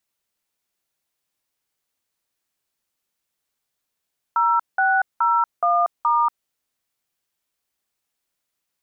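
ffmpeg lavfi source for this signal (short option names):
-f lavfi -i "aevalsrc='0.126*clip(min(mod(t,0.422),0.236-mod(t,0.422))/0.002,0,1)*(eq(floor(t/0.422),0)*(sin(2*PI*941*mod(t,0.422))+sin(2*PI*1336*mod(t,0.422)))+eq(floor(t/0.422),1)*(sin(2*PI*770*mod(t,0.422))+sin(2*PI*1477*mod(t,0.422)))+eq(floor(t/0.422),2)*(sin(2*PI*941*mod(t,0.422))+sin(2*PI*1336*mod(t,0.422)))+eq(floor(t/0.422),3)*(sin(2*PI*697*mod(t,0.422))+sin(2*PI*1209*mod(t,0.422)))+eq(floor(t/0.422),4)*(sin(2*PI*941*mod(t,0.422))+sin(2*PI*1209*mod(t,0.422))))':d=2.11:s=44100"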